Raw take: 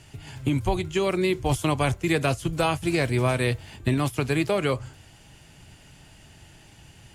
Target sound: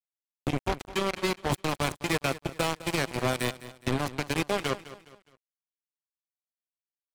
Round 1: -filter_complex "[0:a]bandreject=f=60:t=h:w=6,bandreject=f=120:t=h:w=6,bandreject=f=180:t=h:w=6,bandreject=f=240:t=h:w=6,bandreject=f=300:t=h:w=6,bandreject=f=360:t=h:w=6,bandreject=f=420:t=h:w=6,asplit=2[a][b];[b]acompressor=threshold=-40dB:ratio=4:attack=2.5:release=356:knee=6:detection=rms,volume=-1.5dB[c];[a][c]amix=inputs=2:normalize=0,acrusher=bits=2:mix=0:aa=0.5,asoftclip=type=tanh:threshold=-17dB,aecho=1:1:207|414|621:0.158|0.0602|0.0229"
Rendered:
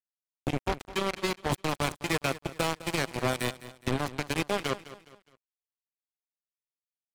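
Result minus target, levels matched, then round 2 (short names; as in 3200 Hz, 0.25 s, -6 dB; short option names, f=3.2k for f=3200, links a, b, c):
compressor: peak gain reduction +5.5 dB
-filter_complex "[0:a]bandreject=f=60:t=h:w=6,bandreject=f=120:t=h:w=6,bandreject=f=180:t=h:w=6,bandreject=f=240:t=h:w=6,bandreject=f=300:t=h:w=6,bandreject=f=360:t=h:w=6,bandreject=f=420:t=h:w=6,asplit=2[a][b];[b]acompressor=threshold=-32.5dB:ratio=4:attack=2.5:release=356:knee=6:detection=rms,volume=-1.5dB[c];[a][c]amix=inputs=2:normalize=0,acrusher=bits=2:mix=0:aa=0.5,asoftclip=type=tanh:threshold=-17dB,aecho=1:1:207|414|621:0.158|0.0602|0.0229"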